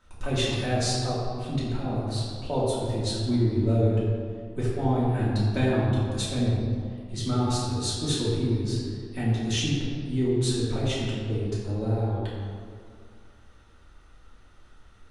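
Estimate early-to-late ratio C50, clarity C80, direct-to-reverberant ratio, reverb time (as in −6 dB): −1.5 dB, 0.5 dB, −9.5 dB, 2.2 s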